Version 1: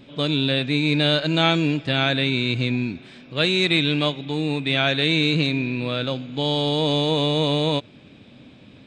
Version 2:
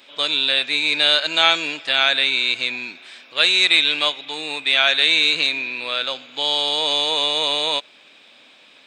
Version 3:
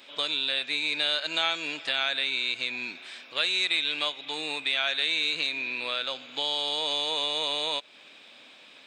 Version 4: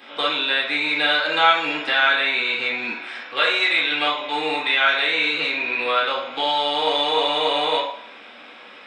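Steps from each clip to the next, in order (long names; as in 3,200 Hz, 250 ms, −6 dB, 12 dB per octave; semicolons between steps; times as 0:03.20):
high-pass filter 860 Hz 12 dB per octave; high-shelf EQ 5,400 Hz +6.5 dB; level +5 dB
downward compressor 2 to 1, threshold −28 dBFS, peak gain reduction 10 dB; level −2 dB
convolution reverb RT60 0.60 s, pre-delay 3 ms, DRR −7 dB; level −2.5 dB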